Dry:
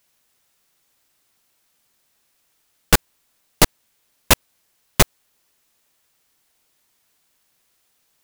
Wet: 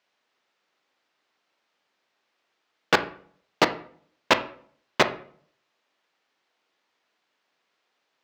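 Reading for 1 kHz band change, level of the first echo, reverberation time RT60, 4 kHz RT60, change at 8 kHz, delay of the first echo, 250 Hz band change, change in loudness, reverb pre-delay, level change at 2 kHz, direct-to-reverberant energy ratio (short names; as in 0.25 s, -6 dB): -0.5 dB, none, 0.55 s, 0.40 s, -17.5 dB, none, -5.5 dB, -5.5 dB, 16 ms, -1.5 dB, 9.0 dB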